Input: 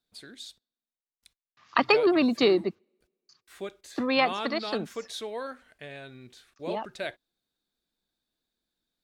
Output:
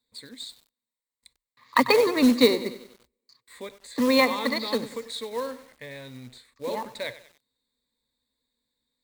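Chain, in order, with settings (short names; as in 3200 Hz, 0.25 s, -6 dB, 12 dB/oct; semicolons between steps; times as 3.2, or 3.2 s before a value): ripple EQ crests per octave 0.99, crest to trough 14 dB; 4.95–5.36 compressor, threshold -30 dBFS, peak gain reduction 5 dB; short-mantissa float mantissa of 2-bit; lo-fi delay 95 ms, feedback 55%, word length 7-bit, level -14.5 dB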